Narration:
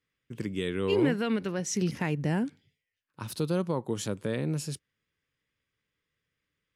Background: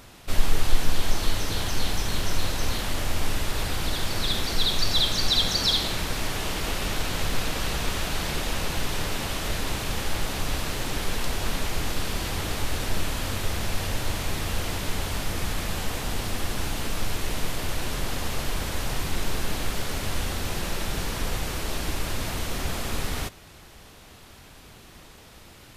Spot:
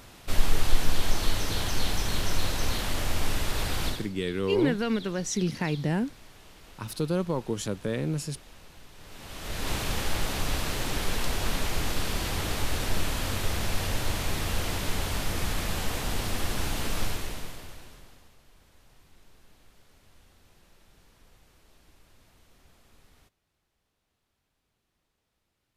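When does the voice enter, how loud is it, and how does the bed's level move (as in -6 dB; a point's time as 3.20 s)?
3.60 s, +1.0 dB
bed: 3.88 s -1.5 dB
4.13 s -23 dB
8.94 s -23 dB
9.71 s -1 dB
17.04 s -1 dB
18.38 s -30.5 dB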